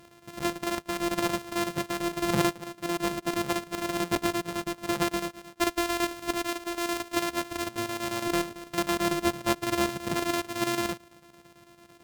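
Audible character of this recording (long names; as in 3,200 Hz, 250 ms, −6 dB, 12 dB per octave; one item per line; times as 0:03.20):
a buzz of ramps at a fixed pitch in blocks of 128 samples
chopped level 9 Hz, depth 60%, duty 75%
SBC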